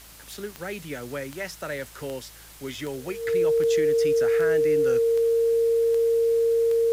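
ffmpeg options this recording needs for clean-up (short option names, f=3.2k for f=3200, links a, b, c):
-af "adeclick=t=4,bandreject=f=54.6:t=h:w=4,bandreject=f=109.2:t=h:w=4,bandreject=f=163.8:t=h:w=4,bandreject=f=460:w=30,afwtdn=0.0045"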